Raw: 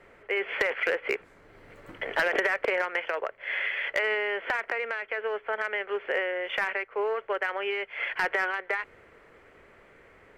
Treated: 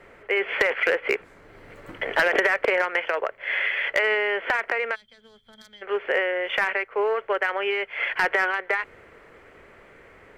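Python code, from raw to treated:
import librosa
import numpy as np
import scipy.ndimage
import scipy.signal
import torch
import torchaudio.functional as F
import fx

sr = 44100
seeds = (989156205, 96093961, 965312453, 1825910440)

y = fx.spec_box(x, sr, start_s=4.95, length_s=0.87, low_hz=240.0, high_hz=3100.0, gain_db=-29)
y = y * 10.0 ** (5.0 / 20.0)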